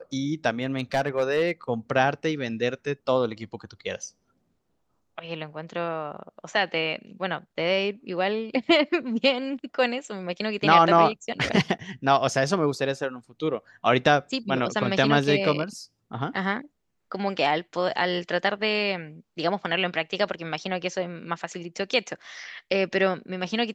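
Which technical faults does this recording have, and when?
0:00.63–0:01.51: clipping −17.5 dBFS

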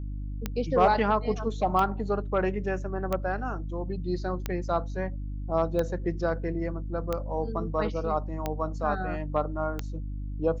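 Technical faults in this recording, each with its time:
mains hum 50 Hz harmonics 6 −34 dBFS
scratch tick 45 rpm −15 dBFS

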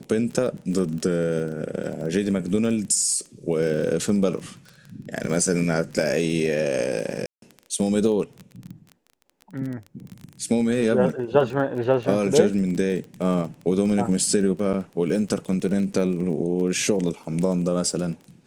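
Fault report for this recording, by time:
surface crackle 21 per second −30 dBFS
0:07.26–0:07.42: drop-out 162 ms
0:14.73–0:14.74: drop-out 8.5 ms

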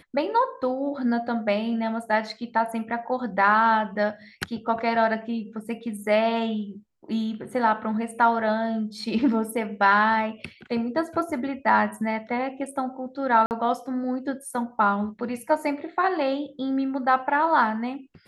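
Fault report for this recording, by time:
0:13.46–0:13.51: drop-out 49 ms

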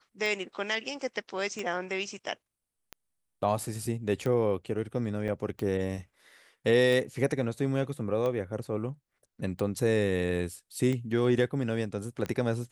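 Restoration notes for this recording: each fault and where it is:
scratch tick 45 rpm
0:05.28–0:05.29: drop-out 5.5 ms

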